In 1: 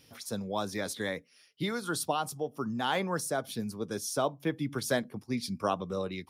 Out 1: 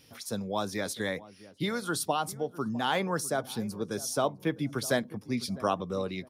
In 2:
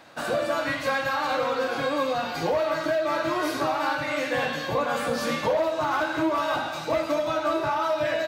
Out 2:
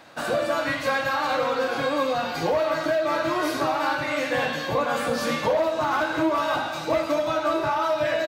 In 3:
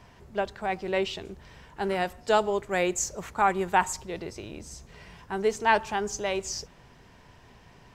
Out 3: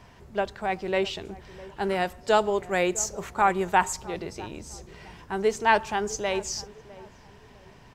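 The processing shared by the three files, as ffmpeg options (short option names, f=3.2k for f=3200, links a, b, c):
-filter_complex "[0:a]asplit=2[a][b];[b]adelay=655,lowpass=f=820:p=1,volume=-17dB,asplit=2[c][d];[d]adelay=655,lowpass=f=820:p=1,volume=0.39,asplit=2[e][f];[f]adelay=655,lowpass=f=820:p=1,volume=0.39[g];[a][c][e][g]amix=inputs=4:normalize=0,volume=1.5dB"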